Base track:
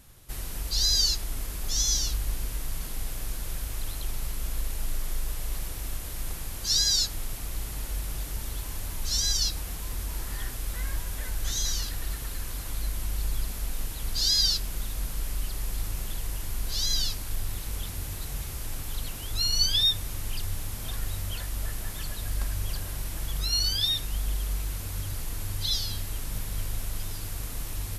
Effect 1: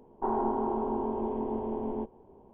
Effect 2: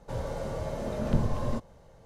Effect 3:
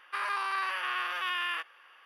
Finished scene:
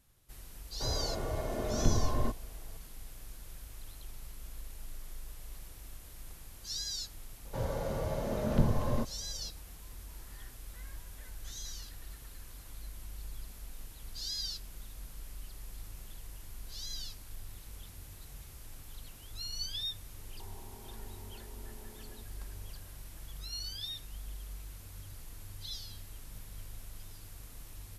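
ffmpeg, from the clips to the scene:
ffmpeg -i bed.wav -i cue0.wav -i cue1.wav -filter_complex "[2:a]asplit=2[link_01][link_02];[0:a]volume=-14.5dB[link_03];[link_01]aecho=1:1:2.8:0.56[link_04];[link_02]aresample=16000,aresample=44100[link_05];[1:a]acompressor=threshold=-46dB:ratio=6:attack=3.2:release=140:knee=1:detection=peak[link_06];[link_04]atrim=end=2.05,asetpts=PTS-STARTPTS,volume=-2dB,afade=type=in:duration=0.004:curve=hsin,afade=type=out:start_time=2.046:duration=0.004:curve=hsin,adelay=720[link_07];[link_05]atrim=end=2.05,asetpts=PTS-STARTPTS,volume=-1dB,afade=type=in:duration=0.004:curve=hsin,afade=type=out:start_time=2.046:duration=0.004:curve=hsin,adelay=7450[link_08];[link_06]atrim=end=2.53,asetpts=PTS-STARTPTS,volume=-7.5dB,afade=type=in:duration=0.004:curve=hsin,afade=type=out:start_time=2.526:duration=0.004:curve=hsin,adelay=20180[link_09];[link_03][link_07][link_08][link_09]amix=inputs=4:normalize=0" out.wav

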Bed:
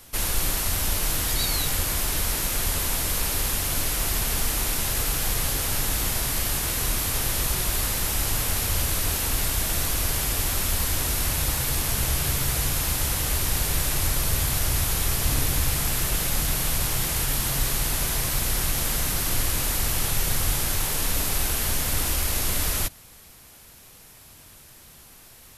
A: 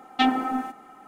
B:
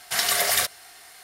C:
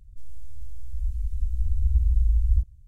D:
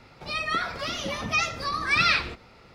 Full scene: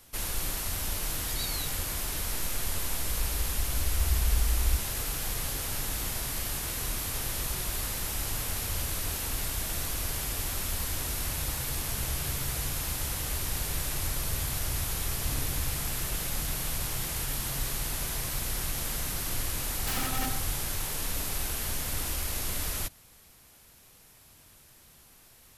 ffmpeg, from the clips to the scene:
ffmpeg -i bed.wav -i cue0.wav -i cue1.wav -i cue2.wav -filter_complex "[0:a]volume=-7.5dB[link_01];[1:a]aeval=exprs='(mod(11.2*val(0)+1,2)-1)/11.2':channel_layout=same[link_02];[3:a]atrim=end=2.87,asetpts=PTS-STARTPTS,volume=-6dB,afade=type=in:duration=0.004:curve=hsin,afade=type=out:start_time=2.866:duration=0.004:curve=hsin,adelay=2160[link_03];[link_02]atrim=end=1.07,asetpts=PTS-STARTPTS,volume=-8dB,afade=type=in:duration=0.004:curve=hsin,afade=type=out:start_time=1.066:duration=0.004:curve=hsin,adelay=19680[link_04];[link_01][link_03][link_04]amix=inputs=3:normalize=0" out.wav

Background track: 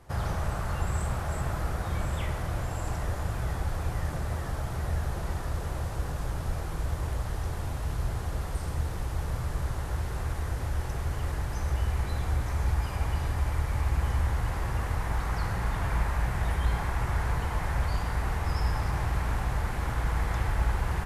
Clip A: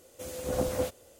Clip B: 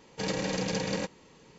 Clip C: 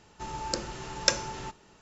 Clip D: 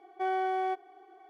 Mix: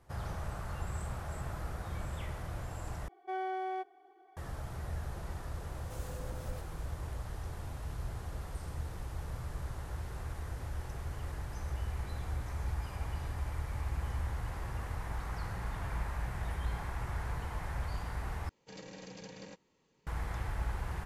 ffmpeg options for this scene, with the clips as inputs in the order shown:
ffmpeg -i bed.wav -i cue0.wav -i cue1.wav -i cue2.wav -i cue3.wav -filter_complex "[0:a]volume=-9dB[link_01];[1:a]acompressor=threshold=-37dB:ratio=6:attack=3.2:release=140:knee=1:detection=peak[link_02];[link_01]asplit=3[link_03][link_04][link_05];[link_03]atrim=end=3.084[link_06];[4:a]atrim=end=1.29,asetpts=PTS-STARTPTS,volume=-6.5dB[link_07];[link_04]atrim=start=4.366:end=18.494[link_08];[2:a]atrim=end=1.58,asetpts=PTS-STARTPTS,volume=-17.5dB[link_09];[link_05]atrim=start=20.066[link_10];[link_02]atrim=end=1.19,asetpts=PTS-STARTPTS,volume=-8.5dB,afade=type=in:duration=0.004:curve=hsin,afade=type=out:start_time=1.186:duration=0.004:curve=hsin,adelay=5710[link_11];[link_06][link_07]acrossfade=duration=0.004:curve1=hsin:curve2=hsin[link_12];[link_12][link_08]acrossfade=duration=0.004:curve1=hsin:curve2=hsin[link_13];[link_13][link_09]acrossfade=duration=0.004:curve1=hsin:curve2=hsin[link_14];[link_14][link_10]acrossfade=duration=0.004:curve1=hsin:curve2=hsin[link_15];[link_15][link_11]amix=inputs=2:normalize=0" out.wav

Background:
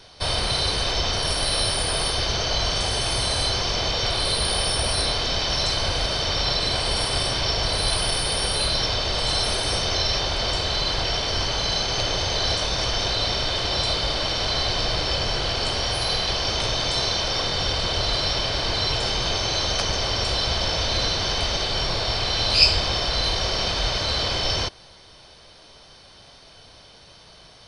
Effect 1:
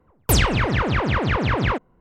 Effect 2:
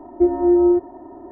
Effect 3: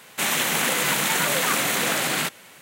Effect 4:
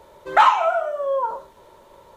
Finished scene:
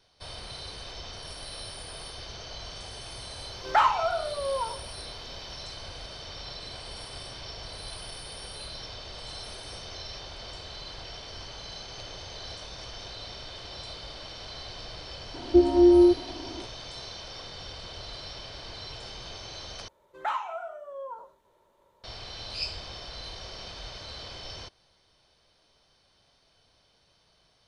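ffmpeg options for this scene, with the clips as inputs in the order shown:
ffmpeg -i bed.wav -i cue0.wav -i cue1.wav -i cue2.wav -i cue3.wav -filter_complex "[4:a]asplit=2[link_01][link_02];[0:a]volume=-17.5dB[link_03];[2:a]lowshelf=frequency=190:gain=10[link_04];[link_03]asplit=2[link_05][link_06];[link_05]atrim=end=19.884[link_07];[link_02]atrim=end=2.16,asetpts=PTS-STARTPTS,volume=-16.5dB[link_08];[link_06]atrim=start=22.036[link_09];[link_01]atrim=end=2.16,asetpts=PTS-STARTPTS,volume=-7.5dB,afade=type=in:duration=0.004:curve=hsin,afade=type=out:start_time=2.156:duration=0.004:curve=hsin,adelay=3380[link_10];[link_04]atrim=end=1.31,asetpts=PTS-STARTPTS,volume=-4.5dB,afade=type=in:duration=0.004:curve=hsin,afade=type=out:start_time=1.306:duration=0.004:curve=hsin,adelay=15340[link_11];[link_07][link_08]acrossfade=duration=0.004:curve1=hsin:curve2=hsin[link_12];[link_12][link_09]acrossfade=duration=0.004:curve1=hsin:curve2=hsin[link_13];[link_13][link_10][link_11]amix=inputs=3:normalize=0" out.wav

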